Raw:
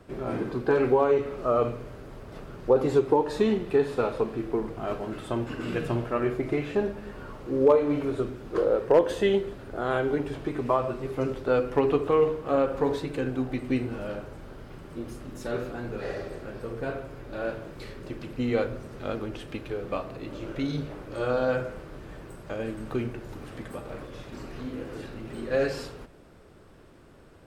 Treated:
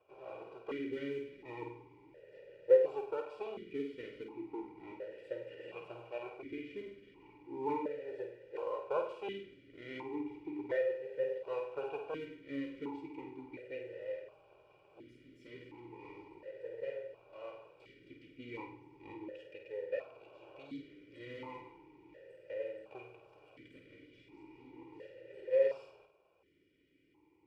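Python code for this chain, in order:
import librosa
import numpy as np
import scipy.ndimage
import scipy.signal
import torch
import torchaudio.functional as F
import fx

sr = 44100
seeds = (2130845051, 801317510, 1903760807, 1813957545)

p1 = fx.lower_of_two(x, sr, delay_ms=0.39)
p2 = p1 + 0.82 * np.pad(p1, (int(2.1 * sr / 1000.0), 0))[:len(p1)]
p3 = p2 + fx.room_flutter(p2, sr, wall_m=8.6, rt60_s=0.46, dry=0)
p4 = fx.mod_noise(p3, sr, seeds[0], snr_db=29)
p5 = fx.vowel_held(p4, sr, hz=1.4)
y = p5 * librosa.db_to_amplitude(-5.0)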